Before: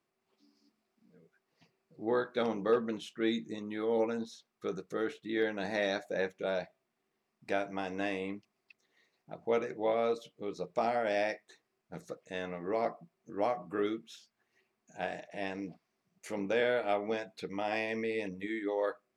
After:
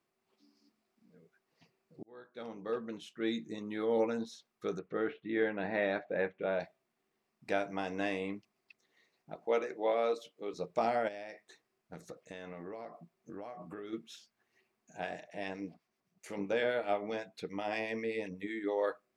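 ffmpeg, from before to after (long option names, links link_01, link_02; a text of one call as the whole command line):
ffmpeg -i in.wav -filter_complex "[0:a]asettb=1/sr,asplit=3[link_01][link_02][link_03];[link_01]atrim=end=4.794[link_04];[link_02]atrim=start=4.79:end=6.6,asetpts=PTS-STARTPTS,afade=type=in:duration=0.004:curve=qsin,afade=type=out:start_time=1.806:duration=0.004:curve=qsin,lowpass=frequency=2900:width=0.5412,lowpass=frequency=2900:width=1.3066[link_05];[link_03]atrim=start=6.596[link_06];[link_04][link_05]acrossfade=duration=0.004:curve1=hsin:curve2=qsin[link_07];[link_07][link_06]acrossfade=duration=0.004:curve1=qsin:curve2=hsin,asettb=1/sr,asplit=3[link_08][link_09][link_10];[link_08]atrim=end=9.354[link_11];[link_09]atrim=start=9.35:end=10.54,asetpts=PTS-STARTPTS,afade=type=in:duration=0.004:curve=qsin,afade=type=out:start_time=1.186:duration=0.004:curve=qsin,highpass=300[link_12];[link_10]atrim=start=10.536[link_13];[link_11][link_12]acrossfade=duration=0.004:curve1=hsin:curve2=qsin[link_14];[link_14][link_13]acrossfade=duration=0.004:curve1=qsin:curve2=hsin,asplit=3[link_15][link_16][link_17];[link_15]afade=type=out:start_time=11.07:duration=0.02[link_18];[link_16]acompressor=threshold=-40dB:ratio=16:attack=3.2:release=140:knee=1:detection=peak,afade=type=in:start_time=11.07:duration=0.02,afade=type=out:start_time=13.92:duration=0.02[link_19];[link_17]afade=type=in:start_time=13.92:duration=0.02[link_20];[link_18][link_19][link_20]amix=inputs=3:normalize=0,asettb=1/sr,asplit=3[link_21][link_22][link_23];[link_21]atrim=end=15.004[link_24];[link_22]atrim=start=15:end=18.64,asetpts=PTS-STARTPTS,afade=type=in:duration=0.004:curve=qsin,afade=type=out:start_time=3.636:duration=0.004:curve=qsin,acrossover=split=1400[link_25][link_26];[link_25]aeval=exprs='val(0)*(1-0.5/2+0.5/2*cos(2*PI*7.8*n/s))':channel_layout=same[link_27];[link_26]aeval=exprs='val(0)*(1-0.5/2-0.5/2*cos(2*PI*7.8*n/s))':channel_layout=same[link_28];[link_27][link_28]amix=inputs=2:normalize=0[link_29];[link_23]atrim=start=18.636[link_30];[link_24][link_29]acrossfade=duration=0.004:curve1=hsin:curve2=qsin[link_31];[link_31][link_30]acrossfade=duration=0.004:curve1=qsin:curve2=hsin,asplit=2[link_32][link_33];[link_32]atrim=end=2.03,asetpts=PTS-STARTPTS,afade=type=out:start_time=2.026:duration=0.004:curve=hsin[link_34];[link_33]atrim=start=2.03,asetpts=PTS-STARTPTS,afade=type=in:duration=1.77[link_35];[link_34][link_35]concat=n=2:v=0:a=1" out.wav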